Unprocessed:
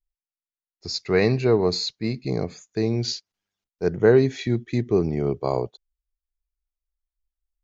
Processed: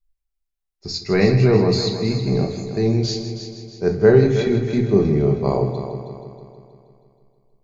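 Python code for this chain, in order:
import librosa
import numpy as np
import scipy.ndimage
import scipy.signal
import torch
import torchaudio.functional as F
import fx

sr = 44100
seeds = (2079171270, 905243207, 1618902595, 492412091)

p1 = fx.low_shelf(x, sr, hz=160.0, db=8.0)
p2 = p1 + fx.echo_heads(p1, sr, ms=159, heads='first and second', feedback_pct=52, wet_db=-12.0, dry=0)
y = fx.room_shoebox(p2, sr, seeds[0], volume_m3=330.0, walls='furnished', distance_m=1.2)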